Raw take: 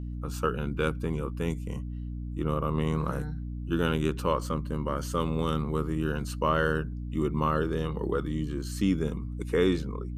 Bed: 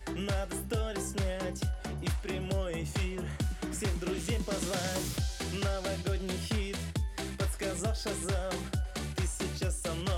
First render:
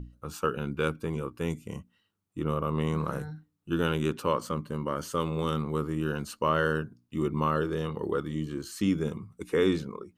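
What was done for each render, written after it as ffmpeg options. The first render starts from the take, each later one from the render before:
-af "bandreject=f=60:t=h:w=6,bandreject=f=120:t=h:w=6,bandreject=f=180:t=h:w=6,bandreject=f=240:t=h:w=6,bandreject=f=300:t=h:w=6"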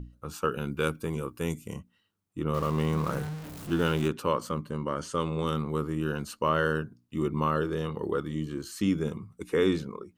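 -filter_complex "[0:a]asettb=1/sr,asplit=3[a][b][c];[a]atrim=end=0.514[d];[b]atrim=start=0.51:end=1.74,asetpts=PTS-STARTPTS,afade=t=in:d=0.004:c=qsin,afade=t=out:st=1.226:d=0.004:c=qsin,highshelf=f=6.8k:g=10.5[e];[c]atrim=start=1.736[f];[d][e]acrossfade=d=0.004:c1=hsin:c2=qsin[g];[g][f]acrossfade=d=0.004:c1=qsin:c2=hsin,asettb=1/sr,asplit=3[h][i][j];[h]atrim=end=2.544[k];[i]atrim=start=2.54:end=4.08,asetpts=PTS-STARTPTS,afade=t=in:d=0.004:c=qsin,afade=t=out:st=1.536:d=0.004:c=qsin,aeval=exprs='val(0)+0.5*0.0168*sgn(val(0))':c=same[l];[j]atrim=start=4.076[m];[k][l]acrossfade=d=0.004:c1=hsin:c2=qsin[n];[n][m]acrossfade=d=0.004:c1=qsin:c2=hsin,asettb=1/sr,asplit=3[o][p][q];[o]atrim=end=4.704[r];[p]atrim=start=4.7:end=5.46,asetpts=PTS-STARTPTS,afade=t=in:d=0.004:c=qsin,afade=t=out:st=0.756:d=0.004:c=qsin,lowpass=f=9.6k:w=0.5412,lowpass=f=9.6k:w=1.3066[s];[q]atrim=start=5.456[t];[r][s]acrossfade=d=0.004:c1=hsin:c2=qsin[u];[u][t]acrossfade=d=0.004:c1=qsin:c2=hsin"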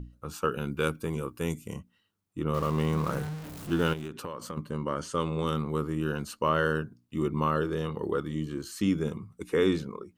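-filter_complex "[0:a]asettb=1/sr,asplit=3[a][b][c];[a]atrim=end=3.934[d];[b]atrim=start=3.93:end=4.57,asetpts=PTS-STARTPTS,afade=t=in:d=0.004:c=qsin,afade=t=out:st=0.636:d=0.004:c=qsin,acompressor=threshold=-32dB:ratio=16:attack=3.2:release=140:knee=1:detection=peak[e];[c]atrim=start=4.566[f];[d][e]acrossfade=d=0.004:c1=hsin:c2=qsin[g];[g][f]acrossfade=d=0.004:c1=qsin:c2=hsin"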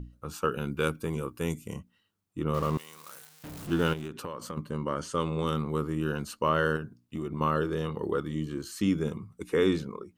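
-filter_complex "[0:a]asettb=1/sr,asplit=3[a][b][c];[a]atrim=end=2.774[d];[b]atrim=start=2.77:end=3.44,asetpts=PTS-STARTPTS,afade=t=in:d=0.004:c=qsin,afade=t=out:st=0.666:d=0.004:c=qsin,aderivative[e];[c]atrim=start=3.436[f];[d][e]acrossfade=d=0.004:c1=hsin:c2=qsin[g];[g][f]acrossfade=d=0.004:c1=qsin:c2=hsin,asettb=1/sr,asplit=3[h][i][j];[h]atrim=end=6.764[k];[i]atrim=start=6.76:end=7.41,asetpts=PTS-STARTPTS,afade=t=in:d=0.004:c=qsin,afade=t=out:st=0.646:d=0.004:c=qsin,acompressor=threshold=-29dB:ratio=6:attack=3.2:release=140:knee=1:detection=peak[l];[j]atrim=start=7.406[m];[k][l]acrossfade=d=0.004:c1=hsin:c2=qsin[n];[n][m]acrossfade=d=0.004:c1=qsin:c2=hsin"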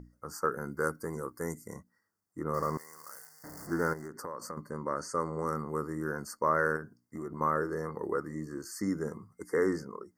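-af "afftfilt=real='re*(1-between(b*sr/4096,2100,4400))':imag='im*(1-between(b*sr/4096,2100,4400))':win_size=4096:overlap=0.75,lowshelf=f=240:g=-12"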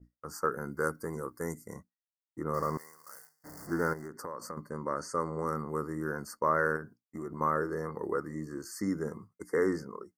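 -af "agate=range=-33dB:threshold=-44dB:ratio=3:detection=peak,adynamicequalizer=threshold=0.00112:dfrequency=7000:dqfactor=1.3:tfrequency=7000:tqfactor=1.3:attack=5:release=100:ratio=0.375:range=2:mode=cutabove:tftype=bell"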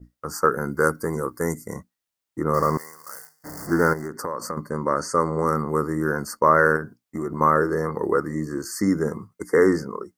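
-af "volume=11dB"

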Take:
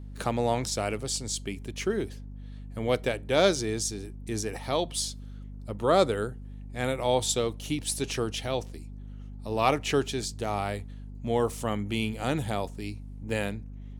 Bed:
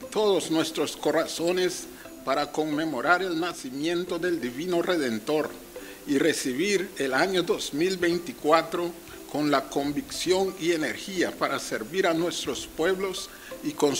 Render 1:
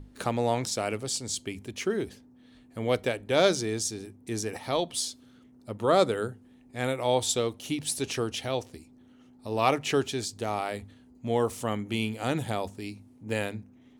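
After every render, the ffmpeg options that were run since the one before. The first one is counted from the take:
-af "bandreject=f=50:t=h:w=6,bandreject=f=100:t=h:w=6,bandreject=f=150:t=h:w=6,bandreject=f=200:t=h:w=6"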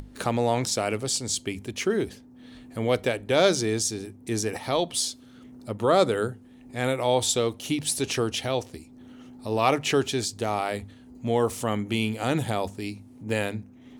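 -filter_complex "[0:a]asplit=2[a][b];[b]alimiter=limit=-21dB:level=0:latency=1,volume=-3dB[c];[a][c]amix=inputs=2:normalize=0,acompressor=mode=upward:threshold=-39dB:ratio=2.5"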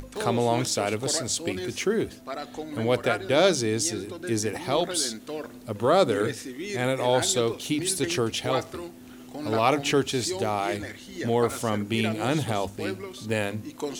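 -filter_complex "[1:a]volume=-9dB[a];[0:a][a]amix=inputs=2:normalize=0"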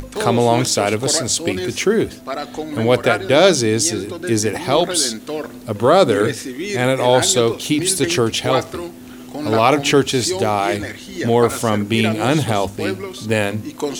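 -af "volume=9dB,alimiter=limit=-1dB:level=0:latency=1"

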